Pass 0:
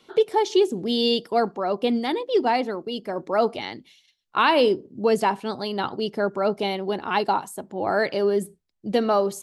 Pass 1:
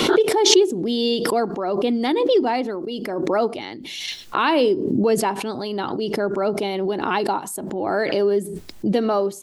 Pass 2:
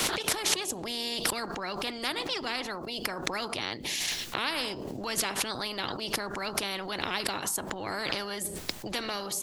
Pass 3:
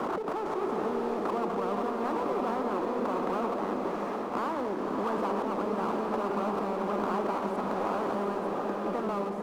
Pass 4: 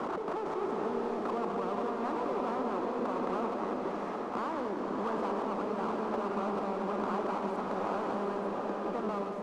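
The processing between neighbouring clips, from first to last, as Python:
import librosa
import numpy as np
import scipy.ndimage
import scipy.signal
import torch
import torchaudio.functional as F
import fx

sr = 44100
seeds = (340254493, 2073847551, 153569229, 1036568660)

y1 = fx.peak_eq(x, sr, hz=320.0, db=6.5, octaves=0.76)
y1 = fx.pre_swell(y1, sr, db_per_s=31.0)
y1 = y1 * 10.0 ** (-1.5 / 20.0)
y2 = fx.spectral_comp(y1, sr, ratio=4.0)
y2 = y2 * 10.0 ** (-6.5 / 20.0)
y3 = scipy.signal.sosfilt(scipy.signal.ellip(3, 1.0, 40, [200.0, 1200.0], 'bandpass', fs=sr, output='sos'), y2)
y3 = fx.power_curve(y3, sr, exponent=0.7)
y3 = fx.rev_bloom(y3, sr, seeds[0], attack_ms=740, drr_db=0.0)
y4 = scipy.signal.sosfilt(scipy.signal.butter(2, 8600.0, 'lowpass', fs=sr, output='sos'), y3)
y4 = y4 + 10.0 ** (-9.0 / 20.0) * np.pad(y4, (int(188 * sr / 1000.0), 0))[:len(y4)]
y4 = y4 * 10.0 ** (-3.5 / 20.0)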